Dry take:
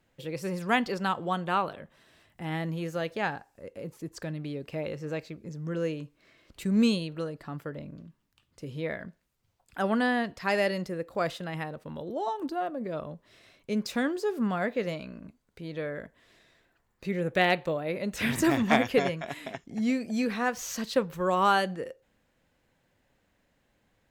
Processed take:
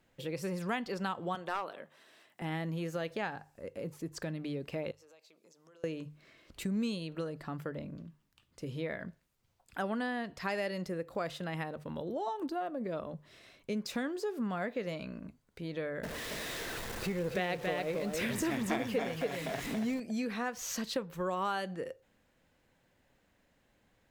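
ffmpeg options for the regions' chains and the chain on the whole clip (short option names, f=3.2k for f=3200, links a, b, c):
-filter_complex "[0:a]asettb=1/sr,asplit=3[a][b][c];[a]atrim=end=1.354[d];[b]atrim=start=1.35:end=2.42,asetpts=PTS-STARTPTS,afade=t=in:d=0.004:c=qsin,afade=t=out:st=1.066:d=0.004:c=qsin,highpass=310,aeval=exprs='clip(val(0),-1,0.0708)':c=same[e];[c]atrim=start=2.416[f];[d][e]acrossfade=d=0.004:c1=hsin:c2=qsin[g];[g][f]acrossfade=d=0.004:c1=qsin:c2=hsin,asettb=1/sr,asplit=3[h][i][j];[h]atrim=end=4.914[k];[i]atrim=start=4.91:end=5.84,asetpts=PTS-STARTPTS,afade=t=in:d=0.004:c=qsin,afade=t=out:st=0.926:d=0.004:c=qsin,highpass=860,equalizer=f=1.8k:w=1.3:g=-12,acompressor=threshold=-58dB:ratio=6:attack=3.2:release=140:knee=1:detection=peak[l];[j]atrim=start=5.836[m];[k][l]acrossfade=d=0.004:c1=hsin:c2=qsin[n];[n][m]acrossfade=d=0.004:c1=qsin:c2=hsin,asettb=1/sr,asplit=3[o][p][q];[o]atrim=end=16.034[r];[p]atrim=start=16.03:end=20,asetpts=PTS-STARTPTS,afade=t=in:d=0.004:c=qsin,afade=t=out:st=3.966:d=0.004:c=qsin,aeval=exprs='val(0)+0.5*0.0168*sgn(val(0))':c=same,equalizer=f=460:w=7.1:g=6,aecho=1:1:278:0.596,atrim=end_sample=175077[s];[q]atrim=start=19.996[t];[r][s]acrossfade=d=0.004:c1=hsin:c2=qsin[u];[u][t]acrossfade=d=0.004:c1=qsin:c2=hsin,bandreject=f=50:t=h:w=6,bandreject=f=100:t=h:w=6,bandreject=f=150:t=h:w=6,acompressor=threshold=-34dB:ratio=3"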